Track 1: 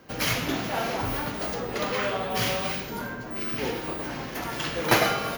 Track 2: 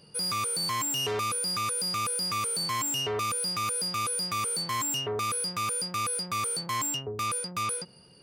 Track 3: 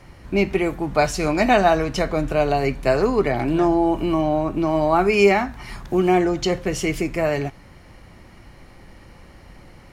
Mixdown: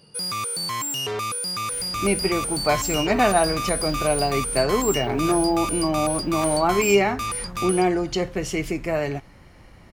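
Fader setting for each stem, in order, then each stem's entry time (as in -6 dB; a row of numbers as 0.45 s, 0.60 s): -20.0 dB, +2.0 dB, -3.0 dB; 1.50 s, 0.00 s, 1.70 s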